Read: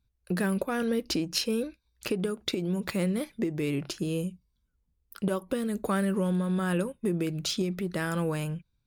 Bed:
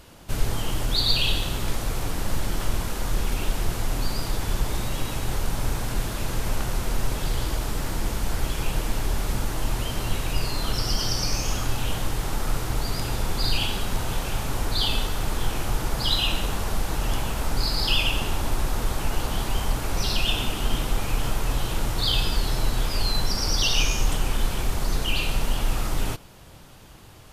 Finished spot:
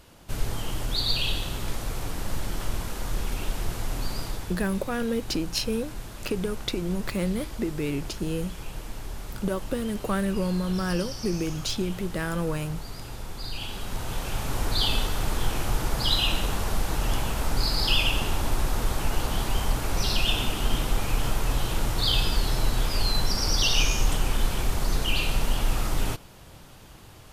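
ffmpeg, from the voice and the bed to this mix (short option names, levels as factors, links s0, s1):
-filter_complex "[0:a]adelay=4200,volume=1.06[s0];[1:a]volume=2.11,afade=t=out:st=4.21:d=0.35:silence=0.446684,afade=t=in:st=13.52:d=1.17:silence=0.298538[s1];[s0][s1]amix=inputs=2:normalize=0"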